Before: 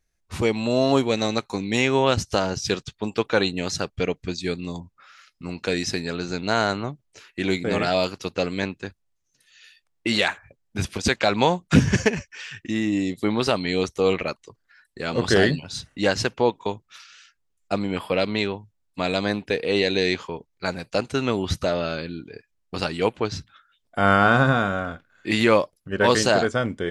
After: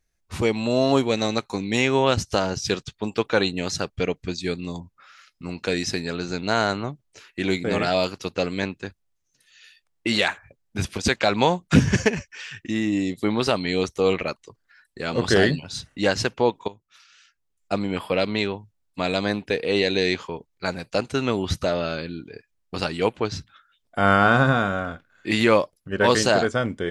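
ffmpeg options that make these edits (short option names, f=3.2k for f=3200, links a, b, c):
-filter_complex "[0:a]asplit=2[a][b];[a]atrim=end=16.68,asetpts=PTS-STARTPTS,afade=t=out:st=16.676:d=0.004:c=hsin:silence=0.158489[c];[b]atrim=start=16.68,asetpts=PTS-STARTPTS,afade=t=in:d=1.07:silence=0.158489[d];[c][d]concat=n=2:v=0:a=1"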